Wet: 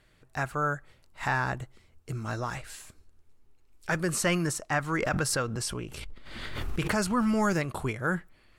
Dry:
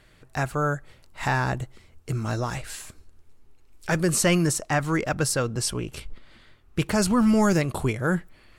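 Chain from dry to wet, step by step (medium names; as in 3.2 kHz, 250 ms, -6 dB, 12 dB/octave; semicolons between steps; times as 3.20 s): dynamic bell 1.4 kHz, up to +6 dB, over -40 dBFS, Q 0.86; 4.98–7.05 s: swell ahead of each attack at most 31 dB/s; trim -7 dB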